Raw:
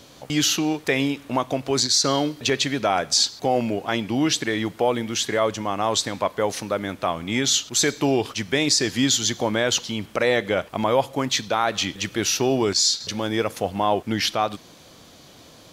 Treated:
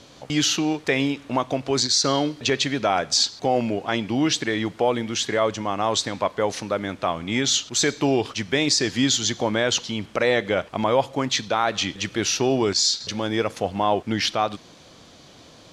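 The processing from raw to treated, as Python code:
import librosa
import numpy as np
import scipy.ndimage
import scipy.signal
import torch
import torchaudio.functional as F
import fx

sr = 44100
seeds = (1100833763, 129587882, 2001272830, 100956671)

y = scipy.signal.sosfilt(scipy.signal.butter(2, 7500.0, 'lowpass', fs=sr, output='sos'), x)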